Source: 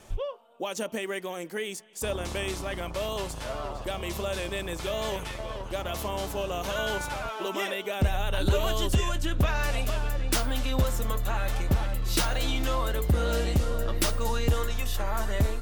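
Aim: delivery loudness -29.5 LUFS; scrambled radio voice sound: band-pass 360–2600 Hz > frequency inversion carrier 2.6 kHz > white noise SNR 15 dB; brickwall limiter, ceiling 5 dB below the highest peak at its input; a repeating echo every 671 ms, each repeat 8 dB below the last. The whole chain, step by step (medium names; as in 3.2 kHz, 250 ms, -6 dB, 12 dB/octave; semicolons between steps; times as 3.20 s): peak limiter -22 dBFS; band-pass 360–2600 Hz; feedback delay 671 ms, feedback 40%, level -8 dB; frequency inversion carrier 2.6 kHz; white noise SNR 15 dB; trim +4.5 dB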